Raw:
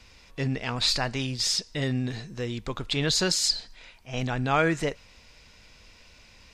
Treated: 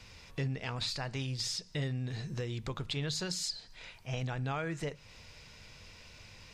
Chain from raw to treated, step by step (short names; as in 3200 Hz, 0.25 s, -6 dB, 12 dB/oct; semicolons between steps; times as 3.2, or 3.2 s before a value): compressor 4:1, threshold -36 dBFS, peak gain reduction 15 dB; on a send: reverb RT60 0.30 s, pre-delay 3 ms, DRR 20 dB